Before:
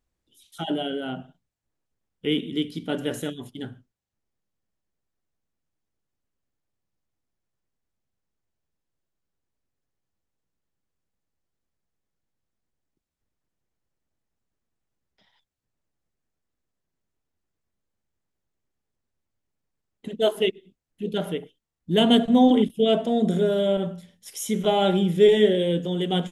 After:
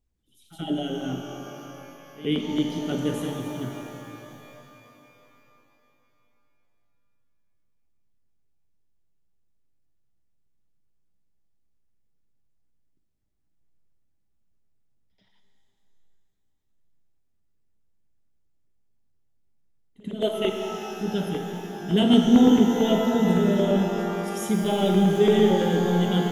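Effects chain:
low-shelf EQ 320 Hz +8.5 dB
echo ahead of the sound 84 ms −16.5 dB
auto-filter notch saw down 8.9 Hz 330–1,800 Hz
reverb with rising layers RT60 3.3 s, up +12 semitones, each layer −8 dB, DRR 3 dB
level −4.5 dB

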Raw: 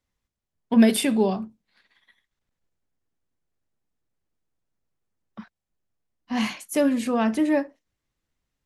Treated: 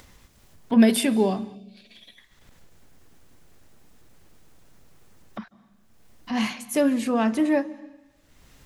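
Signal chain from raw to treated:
upward compression, threshold −29 dBFS
on a send at −20.5 dB: convolution reverb RT60 1.1 s, pre-delay 138 ms
on the sum: gain on a spectral selection 0:01.55–0:02.18, 750–2,200 Hz −16 dB

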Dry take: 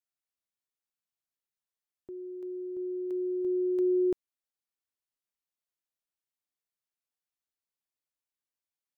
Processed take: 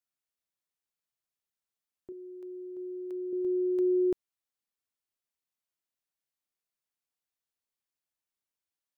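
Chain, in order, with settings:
0:02.12–0:03.33: low-shelf EQ 270 Hz −11.5 dB

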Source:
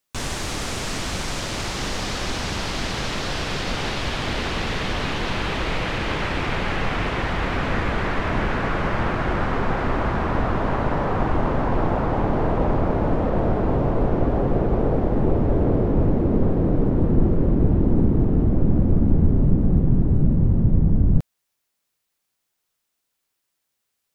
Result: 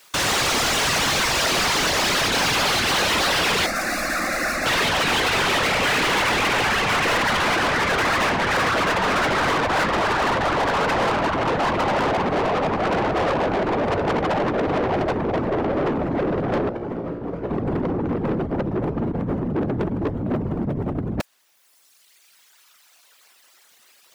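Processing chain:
reverb reduction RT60 1.9 s
random phases in short frames
brickwall limiter −15 dBFS, peak gain reduction 10.5 dB
compressor whose output falls as the input rises −31 dBFS, ratio −1
0:16.69–0:17.51: tuned comb filter 58 Hz, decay 0.91 s, harmonics all, mix 80%
mid-hump overdrive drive 32 dB, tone 5,100 Hz, clips at −13.5 dBFS
0:03.66–0:04.66: phaser with its sweep stopped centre 630 Hz, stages 8

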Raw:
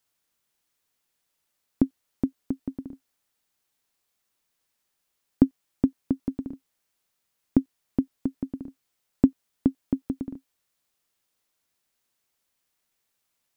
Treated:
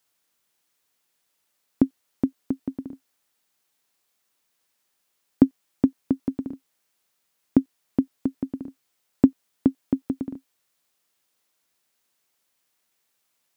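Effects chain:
high-pass filter 160 Hz 6 dB per octave
level +4 dB

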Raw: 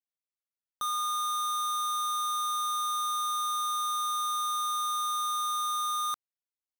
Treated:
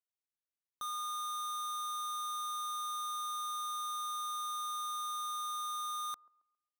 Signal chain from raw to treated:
delay with a band-pass on its return 136 ms, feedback 32%, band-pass 480 Hz, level −19.5 dB
level −8 dB

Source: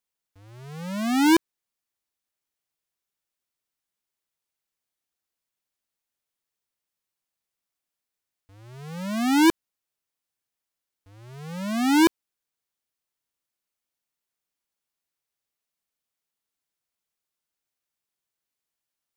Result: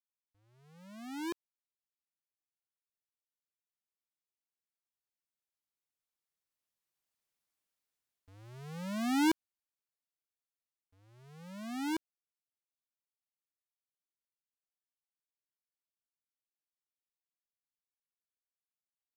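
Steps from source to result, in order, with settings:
source passing by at 0:07.45, 11 m/s, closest 8.1 metres
level −2 dB

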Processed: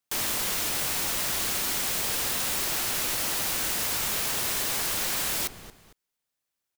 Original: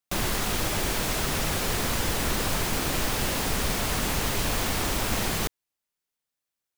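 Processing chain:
repeating echo 227 ms, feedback 31%, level −20 dB
wrap-around overflow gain 25.5 dB
level +2 dB

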